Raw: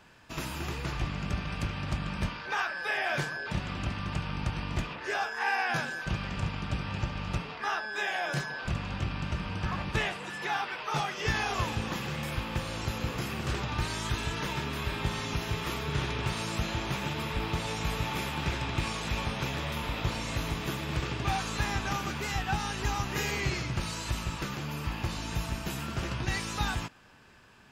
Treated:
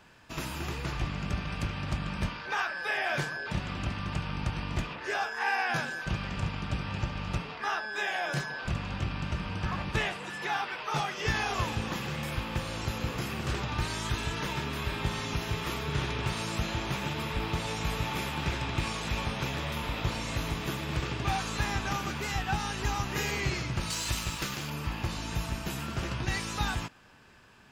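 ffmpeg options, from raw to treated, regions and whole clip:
-filter_complex "[0:a]asettb=1/sr,asplit=3[a][b][c];[a]atrim=end=23.904[d];[b]atrim=start=23.9:end=24.7,asetpts=PTS-STARTPTS,afade=t=in:d=0.004:c=qsin,afade=t=out:st=0.796:d=0.004:c=qsin,highshelf=f=2.3k:g=9.5,aeval=exprs='sgn(val(0))*max(abs(val(0))-0.00562,0)':c=same[e];[c]atrim=start=24.696[f];[d][e]acrossfade=d=0.004:c1=hsin:c2=qsin[g];[g][f]acrossfade=d=0.004:c1=qsin:c2=hsin"

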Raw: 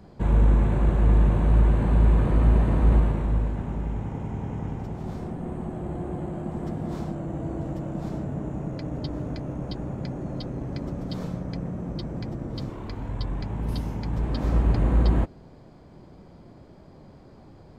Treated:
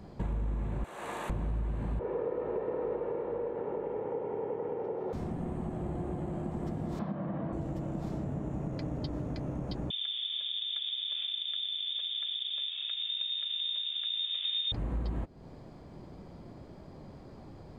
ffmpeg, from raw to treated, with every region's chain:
-filter_complex "[0:a]asettb=1/sr,asplit=3[a][b][c];[a]atrim=end=0.844[d];[b]atrim=start=0.84:end=1.3,asetpts=PTS-STARTPTS,afade=t=in:d=0.004:c=qsin,afade=t=out:st=0.456:d=0.004:c=qsin,highpass=690,aemphasis=mode=production:type=50kf[e];[c]atrim=start=1.296[f];[d][e]acrossfade=d=0.004:c1=hsin:c2=qsin[g];[g][f]acrossfade=d=0.004:c1=qsin:c2=hsin,asettb=1/sr,asplit=3[h][i][j];[h]atrim=end=1.994[k];[i]atrim=start=1.99:end=5.13,asetpts=PTS-STARTPTS,afade=t=in:d=0.004:c=qsin,afade=t=out:st=3.136:d=0.004:c=qsin,highpass=330,lowpass=2k,equalizer=f=470:t=o:w=0.67:g=15,aecho=1:1:2.2:0.4,atrim=end_sample=138474[l];[j]atrim=start=5.126[m];[k][l]acrossfade=d=0.004:c1=hsin:c2=qsin[n];[n][m]acrossfade=d=0.004:c1=qsin:c2=hsin,asettb=1/sr,asplit=3[o][p][q];[o]atrim=end=6.994[r];[p]atrim=start=6.99:end=7.53,asetpts=PTS-STARTPTS,afade=t=in:d=0.004:c=qsin,afade=t=out:st=0.536:d=0.004:c=qsin,highpass=140,equalizer=f=200:t=q:w=4:g=8,equalizer=f=370:t=q:w=4:g=-7,equalizer=f=590:t=q:w=4:g=4,equalizer=f=1.1k:t=q:w=4:g=8,equalizer=f=1.7k:t=q:w=4:g=6,lowpass=f=3.8k:w=0.5412,lowpass=f=3.8k:w=1.3066,bandreject=f=2.8k:w=30[s];[q]atrim=start=7.526[t];[r][s]acrossfade=d=0.004:c1=hsin:c2=qsin[u];[u][t]acrossfade=d=0.004:c1=qsin:c2=hsin,asettb=1/sr,asplit=3[v][w][x];[v]atrim=end=9.904[y];[w]atrim=start=9.9:end=14.72,asetpts=PTS-STARTPTS,afade=t=in:d=0.004:c=qsin,afade=t=out:st=4.816:d=0.004:c=qsin,bandreject=f=880:w=6.9,adynamicsmooth=sensitivity=6.5:basefreq=680,lowpass=f=3.1k:t=q:w=0.5098,lowpass=f=3.1k:t=q:w=0.6013,lowpass=f=3.1k:t=q:w=0.9,lowpass=f=3.1k:t=q:w=2.563,afreqshift=-3700[z];[x]atrim=start=14.716[aa];[y][z]acrossfade=d=0.004:c1=hsin:c2=qsin[ab];[ab][aa]acrossfade=d=0.004:c1=qsin:c2=hsin,bandreject=f=1.5k:w=28,acompressor=threshold=-32dB:ratio=5"

